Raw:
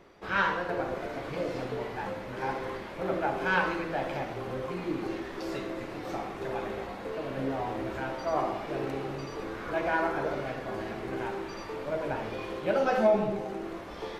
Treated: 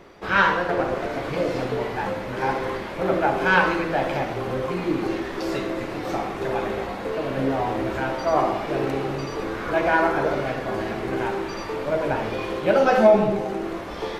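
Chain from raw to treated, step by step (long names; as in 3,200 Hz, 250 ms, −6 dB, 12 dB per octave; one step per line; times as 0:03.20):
0:00.67–0:01.11: highs frequency-modulated by the lows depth 0.19 ms
level +8.5 dB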